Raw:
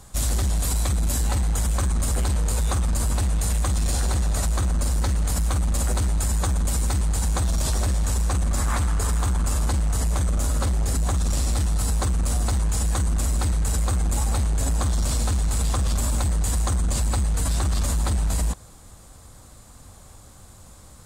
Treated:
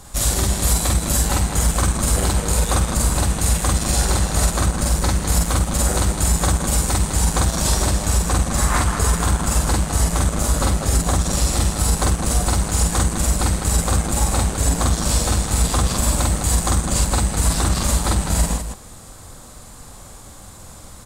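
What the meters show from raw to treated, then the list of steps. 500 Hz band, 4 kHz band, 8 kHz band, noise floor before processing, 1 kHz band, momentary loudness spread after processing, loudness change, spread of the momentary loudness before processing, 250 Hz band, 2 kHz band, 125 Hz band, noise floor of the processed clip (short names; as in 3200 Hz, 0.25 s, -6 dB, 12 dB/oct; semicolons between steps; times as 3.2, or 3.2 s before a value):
+8.5 dB, +8.5 dB, +8.5 dB, -47 dBFS, +8.5 dB, 1 LU, +5.0 dB, 0 LU, +7.5 dB, +8.5 dB, +3.0 dB, -40 dBFS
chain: bell 68 Hz -5 dB 1.6 oct; loudspeakers at several distances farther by 16 m -1 dB, 70 m -7 dB; gain +5.5 dB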